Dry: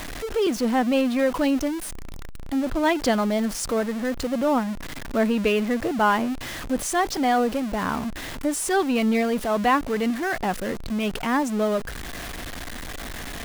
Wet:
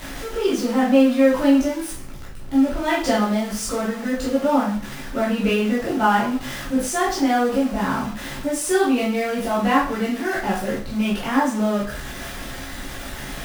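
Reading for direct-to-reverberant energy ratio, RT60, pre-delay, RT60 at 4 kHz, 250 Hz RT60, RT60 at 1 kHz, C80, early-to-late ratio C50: -7.5 dB, 0.45 s, 6 ms, 0.40 s, 0.50 s, 0.45 s, 10.0 dB, 4.5 dB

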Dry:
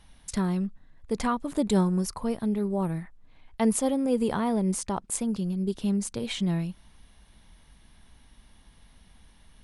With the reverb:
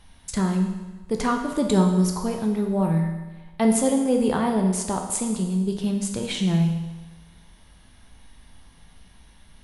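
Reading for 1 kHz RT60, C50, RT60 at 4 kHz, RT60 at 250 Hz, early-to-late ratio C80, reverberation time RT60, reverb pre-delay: 1.2 s, 5.5 dB, 1.2 s, 1.2 s, 7.5 dB, 1.2 s, 12 ms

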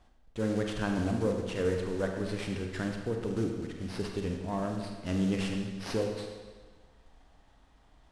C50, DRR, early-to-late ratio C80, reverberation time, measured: 4.0 dB, 2.0 dB, 6.0 dB, 1.4 s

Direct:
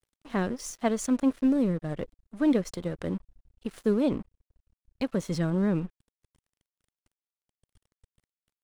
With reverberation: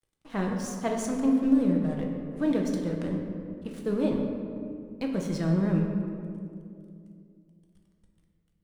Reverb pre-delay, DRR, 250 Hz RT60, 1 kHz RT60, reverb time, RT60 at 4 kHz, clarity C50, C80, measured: 6 ms, 0.5 dB, 3.3 s, 2.1 s, 2.4 s, 1.2 s, 3.5 dB, 4.5 dB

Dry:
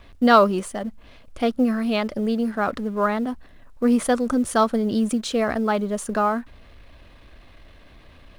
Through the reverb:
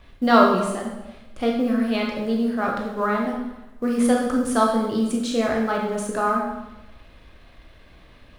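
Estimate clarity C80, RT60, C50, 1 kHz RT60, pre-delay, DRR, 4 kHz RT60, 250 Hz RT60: 6.0 dB, 1.0 s, 3.0 dB, 1.0 s, 14 ms, -1.0 dB, 0.85 s, 1.1 s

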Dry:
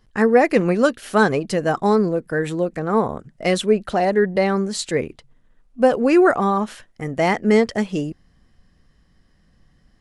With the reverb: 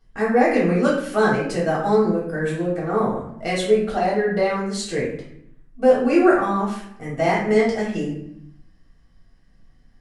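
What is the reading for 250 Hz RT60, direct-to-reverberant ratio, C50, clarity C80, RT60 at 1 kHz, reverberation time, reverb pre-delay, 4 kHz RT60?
1.1 s, -6.5 dB, 3.5 dB, 7.5 dB, 0.75 s, 0.75 s, 3 ms, 0.50 s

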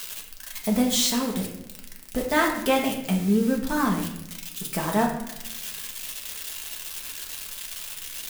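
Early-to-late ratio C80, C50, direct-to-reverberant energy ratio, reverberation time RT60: 9.0 dB, 6.5 dB, -0.5 dB, 0.95 s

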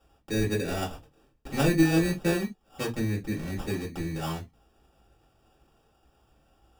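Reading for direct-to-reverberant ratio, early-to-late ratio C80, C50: -4.0 dB, 27.5 dB, 17.0 dB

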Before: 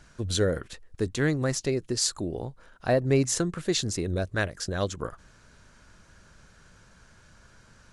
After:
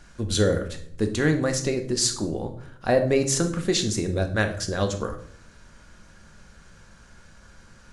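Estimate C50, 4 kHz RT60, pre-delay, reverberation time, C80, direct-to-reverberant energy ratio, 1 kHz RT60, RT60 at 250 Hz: 11.0 dB, 0.45 s, 4 ms, 0.65 s, 15.0 dB, 5.0 dB, 0.55 s, 0.90 s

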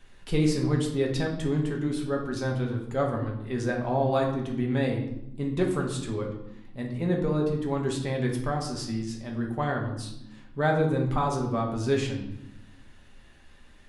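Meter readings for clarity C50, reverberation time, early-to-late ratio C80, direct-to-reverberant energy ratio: 6.0 dB, 0.90 s, 9.0 dB, 0.0 dB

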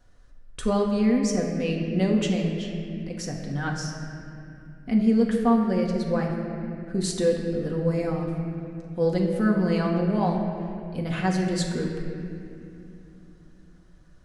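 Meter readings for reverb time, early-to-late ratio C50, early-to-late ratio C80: 2.7 s, 3.5 dB, 4.5 dB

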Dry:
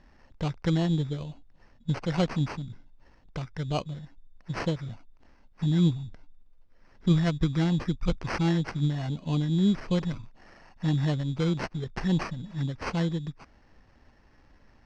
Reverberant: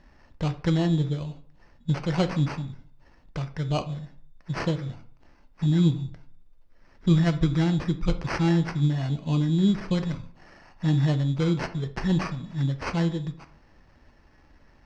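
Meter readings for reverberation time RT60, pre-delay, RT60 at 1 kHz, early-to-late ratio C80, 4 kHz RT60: 0.55 s, 3 ms, 0.50 s, 18.5 dB, 0.30 s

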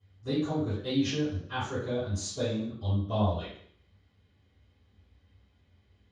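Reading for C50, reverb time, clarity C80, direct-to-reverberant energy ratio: 2.5 dB, 0.60 s, 7.0 dB, -14.5 dB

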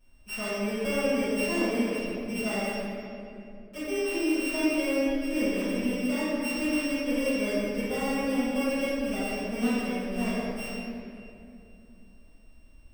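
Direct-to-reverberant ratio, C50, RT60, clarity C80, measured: -15.5 dB, -5.0 dB, 2.7 s, -2.5 dB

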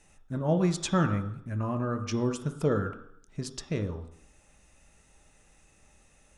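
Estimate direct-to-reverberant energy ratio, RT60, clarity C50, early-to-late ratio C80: 5.0 dB, 0.70 s, 10.0 dB, 12.5 dB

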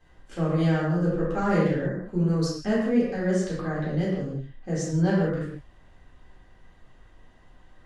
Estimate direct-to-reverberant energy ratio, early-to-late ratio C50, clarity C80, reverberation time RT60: -8.0 dB, 0.0 dB, 3.0 dB, no single decay rate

